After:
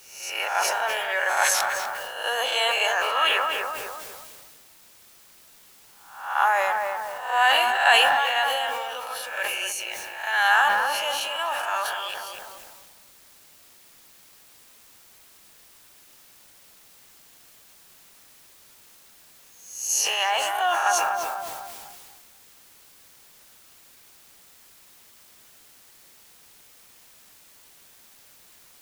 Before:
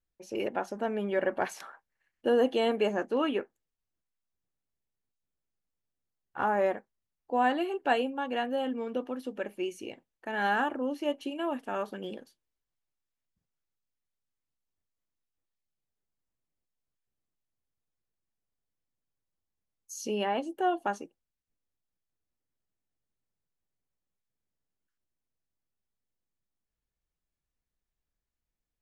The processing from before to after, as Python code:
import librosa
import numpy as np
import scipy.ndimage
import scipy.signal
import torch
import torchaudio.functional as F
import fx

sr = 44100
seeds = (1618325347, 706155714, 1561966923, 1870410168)

p1 = fx.spec_swells(x, sr, rise_s=0.65)
p2 = scipy.signal.sosfilt(scipy.signal.butter(4, 820.0, 'highpass', fs=sr, output='sos'), p1)
p3 = fx.high_shelf(p2, sr, hz=4000.0, db=10.0)
p4 = fx.echo_tape(p3, sr, ms=248, feedback_pct=49, wet_db=-4.5, lp_hz=1300.0, drive_db=18.0, wow_cents=35)
p5 = fx.quant_dither(p4, sr, seeds[0], bits=8, dither='triangular')
p6 = p4 + (p5 * librosa.db_to_amplitude(-11.0))
p7 = fx.sustainer(p6, sr, db_per_s=24.0)
y = p7 * librosa.db_to_amplitude(6.0)